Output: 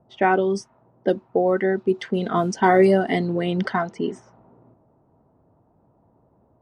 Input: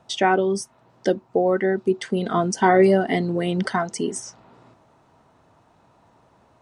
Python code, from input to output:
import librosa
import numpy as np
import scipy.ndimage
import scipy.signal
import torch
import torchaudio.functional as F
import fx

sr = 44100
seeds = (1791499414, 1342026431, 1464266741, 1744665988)

y = fx.quant_dither(x, sr, seeds[0], bits=10, dither='triangular', at=(1.99, 2.84), fade=0.02)
y = fx.env_lowpass(y, sr, base_hz=560.0, full_db=-15.5)